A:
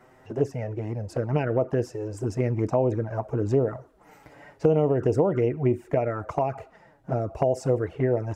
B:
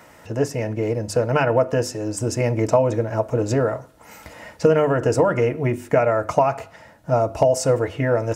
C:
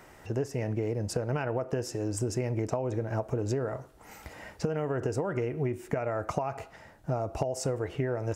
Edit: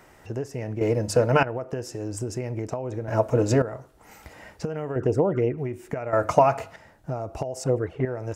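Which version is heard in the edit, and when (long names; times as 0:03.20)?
C
0:00.81–0:01.43: punch in from B
0:03.08–0:03.62: punch in from B
0:04.96–0:05.58: punch in from A
0:06.13–0:06.76: punch in from B
0:07.64–0:08.05: punch in from A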